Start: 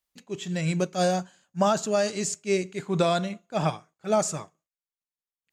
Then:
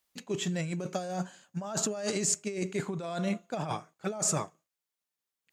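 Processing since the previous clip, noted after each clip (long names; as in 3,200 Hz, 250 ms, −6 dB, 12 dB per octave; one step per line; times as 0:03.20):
dynamic equaliser 3,700 Hz, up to −4 dB, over −47 dBFS, Q 0.83
compressor whose output falls as the input rises −32 dBFS, ratio −1
low-shelf EQ 68 Hz −10.5 dB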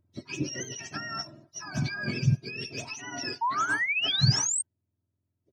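frequency axis turned over on the octave scale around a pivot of 1,000 Hz
sound drawn into the spectrogram rise, 0:03.41–0:04.62, 890–8,700 Hz −29 dBFS
comb filter 3.1 ms, depth 55%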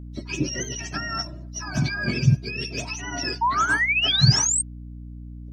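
mains hum 60 Hz, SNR 13 dB
level +6 dB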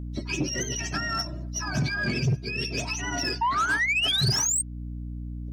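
in parallel at +2.5 dB: downward compressor, threshold −30 dBFS, peak gain reduction 18.5 dB
on the sum: soft clipping −14.5 dBFS, distortion −12 dB
level −4 dB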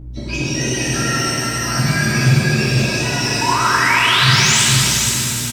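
on a send: single-tap delay 475 ms −4.5 dB
on the sum: reverb with rising layers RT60 3.3 s, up +7 semitones, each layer −8 dB, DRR −9 dB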